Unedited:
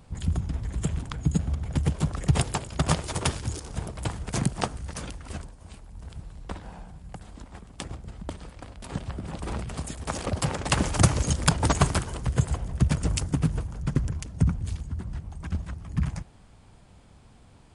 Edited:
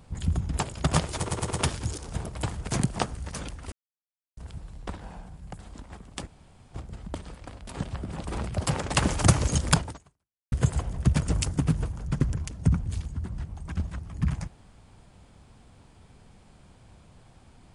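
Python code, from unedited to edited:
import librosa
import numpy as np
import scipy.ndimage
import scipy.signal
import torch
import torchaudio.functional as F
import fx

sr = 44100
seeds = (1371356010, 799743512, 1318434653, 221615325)

y = fx.edit(x, sr, fx.cut(start_s=0.57, length_s=1.95),
    fx.stutter(start_s=3.13, slice_s=0.11, count=4),
    fx.silence(start_s=5.34, length_s=0.65),
    fx.insert_room_tone(at_s=7.89, length_s=0.47),
    fx.cut(start_s=9.7, length_s=0.6),
    fx.fade_out_span(start_s=11.54, length_s=0.73, curve='exp'), tone=tone)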